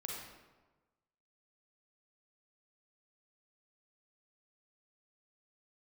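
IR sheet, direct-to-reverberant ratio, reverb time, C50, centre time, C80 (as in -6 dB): -2.0 dB, 1.2 s, -1.0 dB, 72 ms, 2.5 dB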